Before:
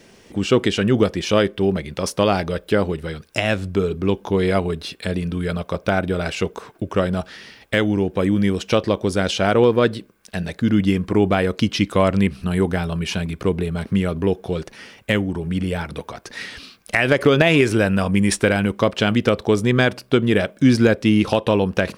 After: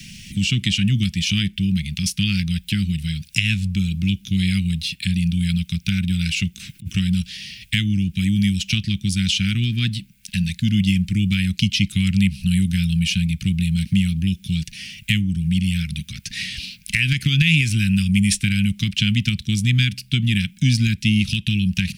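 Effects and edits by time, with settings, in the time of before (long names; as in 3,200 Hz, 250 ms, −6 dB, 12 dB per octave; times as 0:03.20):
0:06.56–0:06.96: compressor whose output falls as the input rises −34 dBFS
whole clip: elliptic band-stop filter 180–2,500 Hz, stop band 60 dB; multiband upward and downward compressor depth 40%; level +5.5 dB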